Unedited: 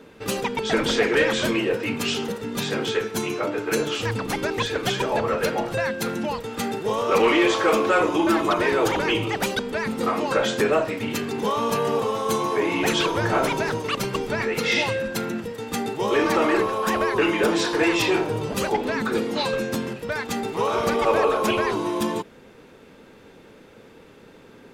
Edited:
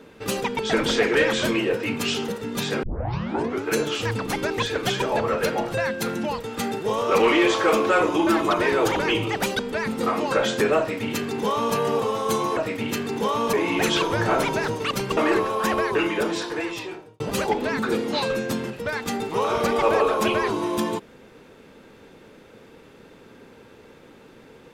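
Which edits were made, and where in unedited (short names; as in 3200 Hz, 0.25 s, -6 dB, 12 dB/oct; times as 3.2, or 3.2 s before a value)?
2.83 tape start 0.83 s
10.79–11.75 copy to 12.57
14.21–16.4 cut
16.96–18.43 fade out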